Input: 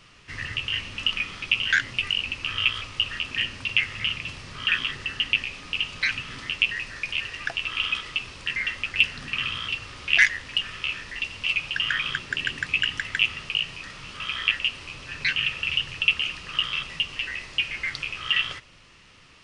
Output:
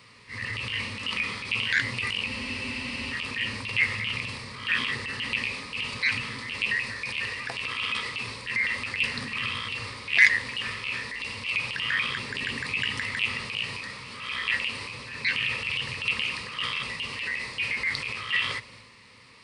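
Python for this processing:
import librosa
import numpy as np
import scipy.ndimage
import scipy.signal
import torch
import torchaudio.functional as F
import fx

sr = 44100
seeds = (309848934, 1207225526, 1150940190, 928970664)

y = scipy.signal.sosfilt(scipy.signal.butter(2, 89.0, 'highpass', fs=sr, output='sos'), x)
y = fx.transient(y, sr, attack_db=-7, sustain_db=5)
y = fx.ripple_eq(y, sr, per_octave=0.94, db=9)
y = fx.spec_freeze(y, sr, seeds[0], at_s=2.3, hold_s=0.82)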